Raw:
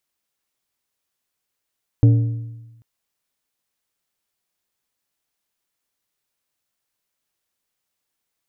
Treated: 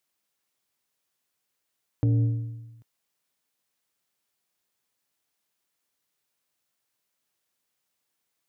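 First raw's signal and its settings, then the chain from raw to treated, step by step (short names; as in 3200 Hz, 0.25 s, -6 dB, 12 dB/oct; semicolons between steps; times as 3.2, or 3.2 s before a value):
metal hit plate, length 0.79 s, lowest mode 115 Hz, modes 5, decay 1.14 s, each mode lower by 10 dB, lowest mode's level -7 dB
HPF 92 Hz; limiter -16.5 dBFS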